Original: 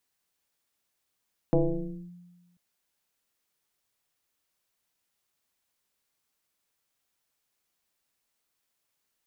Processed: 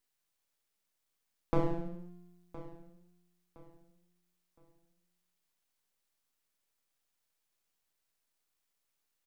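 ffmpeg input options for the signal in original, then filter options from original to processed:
-f lavfi -i "aevalsrc='0.141*pow(10,-3*t/1.3)*sin(2*PI*176*t+2.8*clip(1-t/0.58,0,1)*sin(2*PI*0.92*176*t))':duration=1.04:sample_rate=44100"
-af "aeval=exprs='max(val(0),0)':channel_layout=same,aecho=1:1:1015|2030|3045:0.141|0.0438|0.0136"

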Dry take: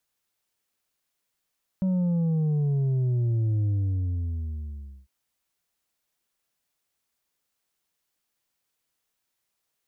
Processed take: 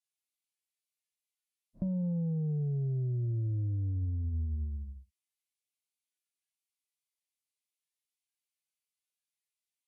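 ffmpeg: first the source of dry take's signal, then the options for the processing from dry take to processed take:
-f lavfi -i "aevalsrc='0.0794*clip((3.25-t)/1.41,0,1)*tanh(1.68*sin(2*PI*190*3.25/log(65/190)*(exp(log(65/190)*t/3.25)-1)))/tanh(1.68)':duration=3.25:sample_rate=44100"
-af "acompressor=threshold=-31dB:ratio=8,afftdn=noise_reduction=13:noise_floor=-43" -ar 32000 -c:a libvorbis -b:a 32k

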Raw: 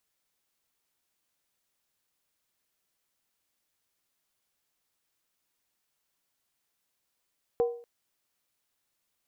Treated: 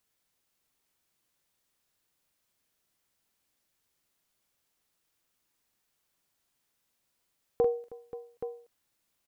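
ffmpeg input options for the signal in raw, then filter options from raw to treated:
-f lavfi -i "aevalsrc='0.106*pow(10,-3*t/0.47)*sin(2*PI*474*t)+0.0266*pow(10,-3*t/0.372)*sin(2*PI*755.6*t)+0.00668*pow(10,-3*t/0.322)*sin(2*PI*1012.5*t)+0.00168*pow(10,-3*t/0.31)*sin(2*PI*1088.3*t)+0.000422*pow(10,-3*t/0.289)*sin(2*PI*1257.5*t)':duration=0.24:sample_rate=44100"
-filter_complex "[0:a]lowshelf=frequency=360:gain=4,asplit=2[link_01][link_02];[link_02]aecho=0:1:44|316|531|825:0.473|0.1|0.168|0.299[link_03];[link_01][link_03]amix=inputs=2:normalize=0"

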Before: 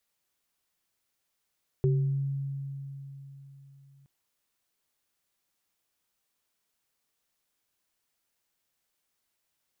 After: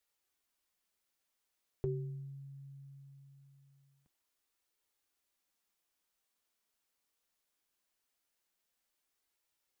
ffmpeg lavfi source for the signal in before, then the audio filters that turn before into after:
-f lavfi -i "aevalsrc='0.0891*pow(10,-3*t/3.8)*sin(2*PI*138*t)+0.0596*pow(10,-3*t/0.54)*sin(2*PI*383*t)':duration=2.22:sample_rate=44100"
-af "equalizer=frequency=130:width=2.5:gain=-10,flanger=delay=2.2:depth=8.1:regen=-52:speed=0.21:shape=sinusoidal"

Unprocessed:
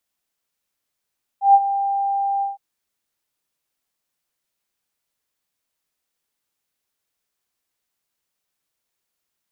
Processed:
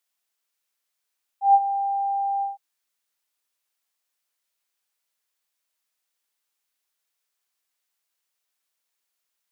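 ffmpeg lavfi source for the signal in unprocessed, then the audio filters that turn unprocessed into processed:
-f lavfi -i "aevalsrc='0.501*sin(2*PI*794*t)':duration=1.163:sample_rate=44100,afade=type=in:duration=0.132,afade=type=out:start_time=0.132:duration=0.048:silence=0.237,afade=type=out:start_time=1.01:duration=0.153"
-af "highpass=frequency=860:poles=1"

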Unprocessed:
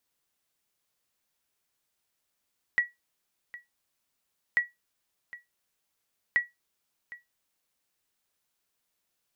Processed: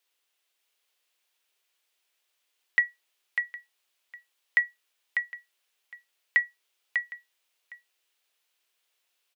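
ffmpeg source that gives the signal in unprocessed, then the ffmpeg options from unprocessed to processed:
-f lavfi -i "aevalsrc='0.168*(sin(2*PI*1930*mod(t,1.79))*exp(-6.91*mod(t,1.79)/0.18)+0.112*sin(2*PI*1930*max(mod(t,1.79)-0.76,0))*exp(-6.91*max(mod(t,1.79)-0.76,0)/0.18))':duration=5.37:sample_rate=44100"
-filter_complex "[0:a]highpass=frequency=350:width=0.5412,highpass=frequency=350:width=1.3066,equalizer=frequency=2900:width_type=o:width=1.2:gain=8,asplit=2[link_01][link_02];[link_02]aecho=0:1:597:0.531[link_03];[link_01][link_03]amix=inputs=2:normalize=0"

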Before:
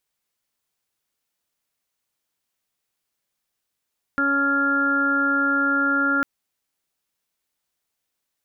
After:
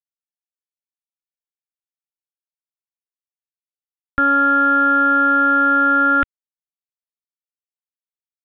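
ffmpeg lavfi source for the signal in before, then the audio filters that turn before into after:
-f lavfi -i "aevalsrc='0.0631*sin(2*PI*279*t)+0.0251*sin(2*PI*558*t)+0.01*sin(2*PI*837*t)+0.0112*sin(2*PI*1116*t)+0.112*sin(2*PI*1395*t)+0.0299*sin(2*PI*1674*t)':duration=2.05:sample_rate=44100"
-af "asubboost=boost=5:cutoff=94,acontrast=76,aresample=8000,aeval=exprs='val(0)*gte(abs(val(0)),0.00841)':channel_layout=same,aresample=44100"

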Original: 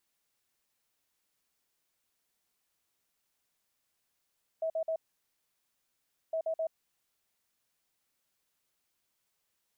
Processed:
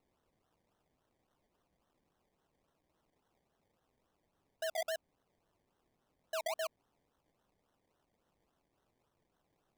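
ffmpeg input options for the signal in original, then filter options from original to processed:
-f lavfi -i "aevalsrc='0.0355*sin(2*PI*646*t)*clip(min(mod(mod(t,1.71),0.13),0.08-mod(mod(t,1.71),0.13))/0.005,0,1)*lt(mod(t,1.71),0.39)':duration=3.42:sample_rate=44100"
-af "alimiter=level_in=9dB:limit=-24dB:level=0:latency=1,volume=-9dB,acrusher=samples=26:mix=1:aa=0.000001:lfo=1:lforange=15.6:lforate=3.6"

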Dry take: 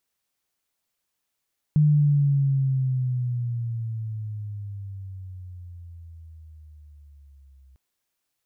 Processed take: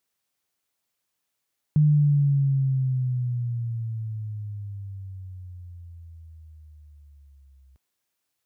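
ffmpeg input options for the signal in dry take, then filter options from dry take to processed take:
-f lavfi -i "aevalsrc='pow(10,(-14-36*t/6)/20)*sin(2*PI*152*6/(-14.5*log(2)/12)*(exp(-14.5*log(2)/12*t/6)-1))':duration=6:sample_rate=44100"
-af "highpass=56"

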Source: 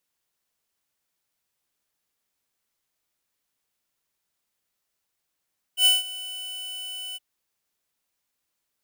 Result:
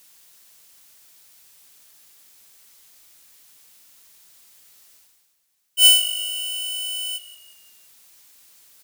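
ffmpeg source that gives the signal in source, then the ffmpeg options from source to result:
-f lavfi -i "aevalsrc='0.158*(2*lt(mod(2990*t,1),0.5)-1)':duration=1.417:sample_rate=44100,afade=type=in:duration=0.086,afade=type=out:start_time=0.086:duration=0.171:silence=0.112,afade=type=out:start_time=1.39:duration=0.027"
-filter_complex "[0:a]highshelf=frequency=2500:gain=10,areverse,acompressor=mode=upward:threshold=-36dB:ratio=2.5,areverse,asplit=5[link_01][link_02][link_03][link_04][link_05];[link_02]adelay=175,afreqshift=-49,volume=-16dB[link_06];[link_03]adelay=350,afreqshift=-98,volume=-22.7dB[link_07];[link_04]adelay=525,afreqshift=-147,volume=-29.5dB[link_08];[link_05]adelay=700,afreqshift=-196,volume=-36.2dB[link_09];[link_01][link_06][link_07][link_08][link_09]amix=inputs=5:normalize=0"

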